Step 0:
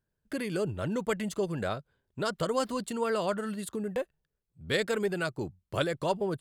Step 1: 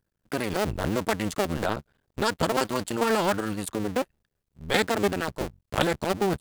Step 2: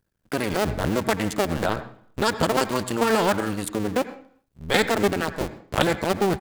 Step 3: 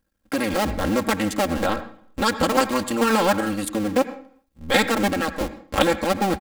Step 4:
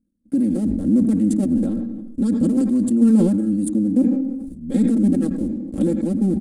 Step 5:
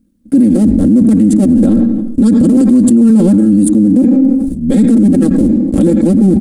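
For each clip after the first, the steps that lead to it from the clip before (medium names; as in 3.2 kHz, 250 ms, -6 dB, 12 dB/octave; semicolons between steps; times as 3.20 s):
cycle switcher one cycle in 2, muted; trim +7.5 dB
echo from a far wall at 22 m, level -28 dB; on a send at -12 dB: reverberation RT60 0.55 s, pre-delay 76 ms; on the sum: trim +3 dB
comb 3.7 ms, depth 78%
FFT filter 100 Hz 0 dB, 240 Hz +15 dB, 940 Hz -23 dB, 2.8 kHz -23 dB, 5.9 kHz -16 dB, 9.5 kHz -2 dB, 14 kHz -26 dB; decay stretcher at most 38 dB/s; trim -5 dB
loudness maximiser +17.5 dB; trim -1 dB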